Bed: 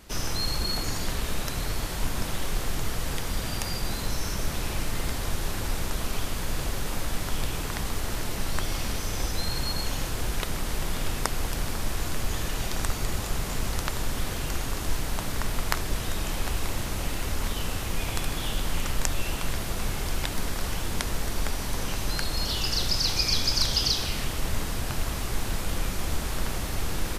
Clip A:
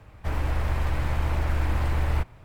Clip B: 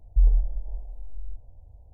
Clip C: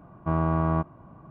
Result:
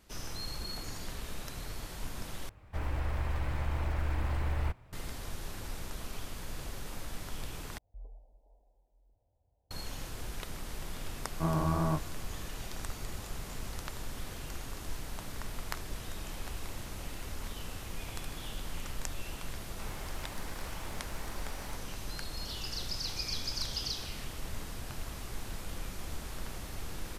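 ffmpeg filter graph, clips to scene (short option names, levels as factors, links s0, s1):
-filter_complex "[1:a]asplit=2[s0][s1];[0:a]volume=0.266[s2];[2:a]highpass=f=290:p=1[s3];[3:a]flanger=delay=17:depth=7.1:speed=2.7[s4];[s1]highpass=450[s5];[s2]asplit=3[s6][s7][s8];[s6]atrim=end=2.494[s9];[s0]atrim=end=2.44,asetpts=PTS-STARTPTS,volume=0.422[s10];[s7]atrim=start=4.926:end=7.784[s11];[s3]atrim=end=1.93,asetpts=PTS-STARTPTS,volume=0.237[s12];[s8]atrim=start=9.706[s13];[s4]atrim=end=1.3,asetpts=PTS-STARTPTS,volume=0.708,afade=t=in:d=0.004:c=hsin,afade=t=out:st=1.296:d=0.004:c=hsin,adelay=491274S[s14];[s5]atrim=end=2.44,asetpts=PTS-STARTPTS,volume=0.224,afade=t=in:d=0.004:c=hsin,afade=t=out:st=2.436:d=0.004:c=hsin,adelay=19540[s15];[s9][s10]acrossfade=d=0.004:c1=hsin:c2=hsin[s16];[s16][s11]acrossfade=d=0.004:c1=hsin:c2=hsin[s17];[s17][s12]acrossfade=d=0.004:c1=hsin:c2=hsin[s18];[s18][s13]acrossfade=d=0.004:c1=hsin:c2=hsin[s19];[s19][s14][s15]amix=inputs=3:normalize=0"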